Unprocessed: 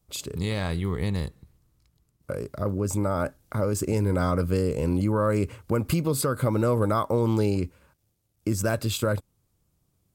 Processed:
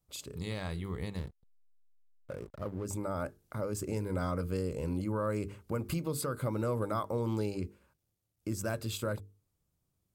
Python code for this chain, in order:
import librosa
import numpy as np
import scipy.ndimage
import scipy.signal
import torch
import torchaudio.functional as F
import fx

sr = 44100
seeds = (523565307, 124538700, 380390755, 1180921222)

y = fx.hum_notches(x, sr, base_hz=50, count=9)
y = fx.backlash(y, sr, play_db=-34.0, at=(1.18, 2.85))
y = y * librosa.db_to_amplitude(-9.0)